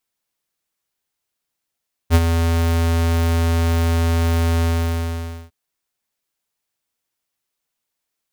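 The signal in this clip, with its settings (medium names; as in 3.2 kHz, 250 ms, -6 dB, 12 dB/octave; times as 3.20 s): ADSR square 83.3 Hz, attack 49 ms, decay 44 ms, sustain -7.5 dB, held 2.52 s, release 885 ms -9.5 dBFS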